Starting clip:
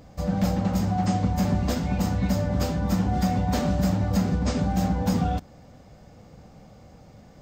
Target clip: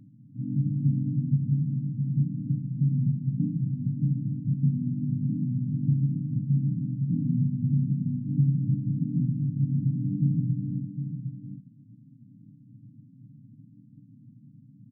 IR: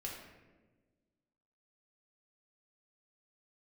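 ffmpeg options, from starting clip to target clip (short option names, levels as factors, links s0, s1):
-filter_complex "[0:a]aeval=exprs='val(0)*sin(2*PI*93*n/s)':c=same,afftfilt=real='re*between(b*sr/4096,210,600)':imag='im*between(b*sr/4096,210,600)':win_size=4096:overlap=0.75,asetrate=21918,aresample=44100,asplit=2[s0][s1];[s1]adelay=758,volume=0.355,highshelf=f=4000:g=-17.1[s2];[s0][s2]amix=inputs=2:normalize=0,volume=1.78"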